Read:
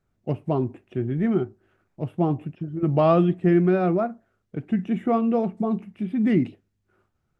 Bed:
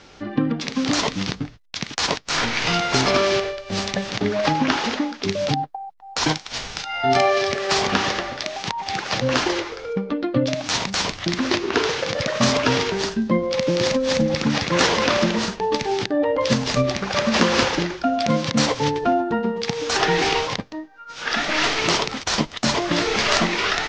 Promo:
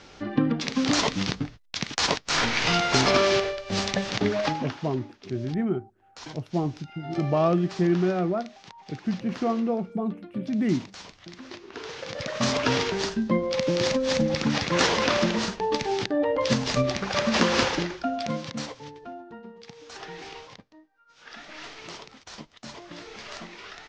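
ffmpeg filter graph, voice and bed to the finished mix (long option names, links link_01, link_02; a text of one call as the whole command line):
ffmpeg -i stem1.wav -i stem2.wav -filter_complex "[0:a]adelay=4350,volume=-4dB[link_01];[1:a]volume=14.5dB,afade=type=out:start_time=4.27:duration=0.47:silence=0.11885,afade=type=in:start_time=11.74:duration=1.02:silence=0.149624,afade=type=out:start_time=17.67:duration=1.14:silence=0.141254[link_02];[link_01][link_02]amix=inputs=2:normalize=0" out.wav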